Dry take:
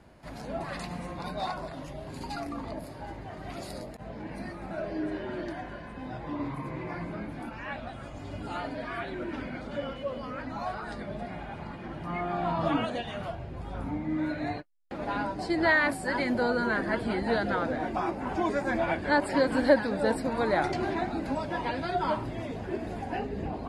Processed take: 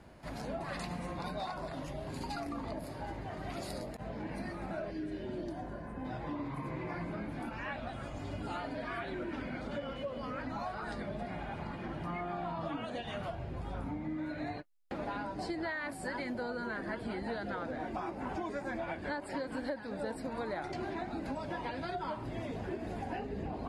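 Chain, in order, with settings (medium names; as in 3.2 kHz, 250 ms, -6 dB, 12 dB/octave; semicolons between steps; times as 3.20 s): 4.90–6.04 s: peaking EQ 690 Hz -> 4.3 kHz -13 dB 1.9 oct; compression 8:1, threshold -35 dBFS, peak gain reduction 19.5 dB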